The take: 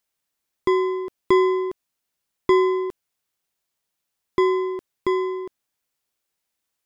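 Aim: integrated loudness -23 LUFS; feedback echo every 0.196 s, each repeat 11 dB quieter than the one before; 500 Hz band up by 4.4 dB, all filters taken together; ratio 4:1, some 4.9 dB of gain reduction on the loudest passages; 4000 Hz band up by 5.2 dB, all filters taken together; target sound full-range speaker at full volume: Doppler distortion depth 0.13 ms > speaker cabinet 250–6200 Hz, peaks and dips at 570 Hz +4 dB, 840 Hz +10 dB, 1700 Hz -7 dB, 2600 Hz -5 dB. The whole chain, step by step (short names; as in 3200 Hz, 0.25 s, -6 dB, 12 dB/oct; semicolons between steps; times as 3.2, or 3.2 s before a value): bell 500 Hz +8 dB; bell 4000 Hz +8 dB; compressor 4:1, threshold -14 dBFS; feedback echo 0.196 s, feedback 28%, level -11 dB; Doppler distortion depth 0.13 ms; speaker cabinet 250–6200 Hz, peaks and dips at 570 Hz +4 dB, 840 Hz +10 dB, 1700 Hz -7 dB, 2600 Hz -5 dB; gain -2.5 dB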